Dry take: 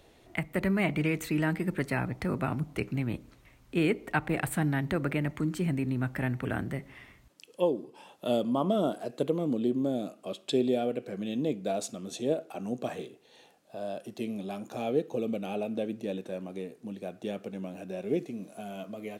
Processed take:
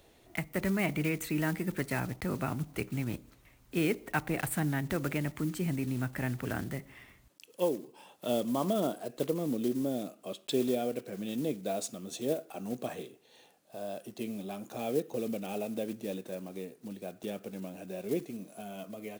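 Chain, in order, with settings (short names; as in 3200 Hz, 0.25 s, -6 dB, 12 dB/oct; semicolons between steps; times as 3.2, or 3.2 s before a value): block floating point 5-bit; high shelf 8400 Hz +7.5 dB; gain -3 dB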